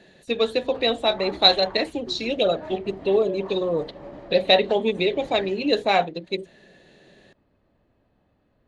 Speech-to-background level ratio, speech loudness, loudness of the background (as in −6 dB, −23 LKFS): 19.5 dB, −22.5 LKFS, −42.0 LKFS